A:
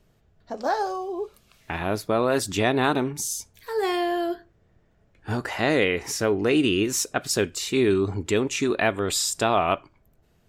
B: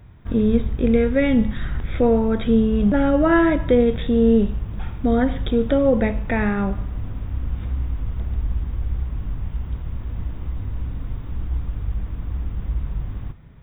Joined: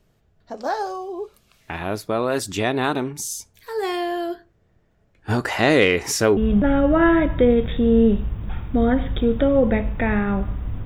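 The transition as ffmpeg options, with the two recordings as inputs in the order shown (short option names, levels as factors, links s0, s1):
-filter_complex "[0:a]asplit=3[s0][s1][s2];[s0]afade=t=out:st=5.28:d=0.02[s3];[s1]acontrast=52,afade=t=in:st=5.28:d=0.02,afade=t=out:st=6.37:d=0.02[s4];[s2]afade=t=in:st=6.37:d=0.02[s5];[s3][s4][s5]amix=inputs=3:normalize=0,apad=whole_dur=10.85,atrim=end=10.85,atrim=end=6.372[s6];[1:a]atrim=start=2.668:end=7.15[s7];[s6][s7]acrossfade=d=0.004:c1=hsin:c2=hsin"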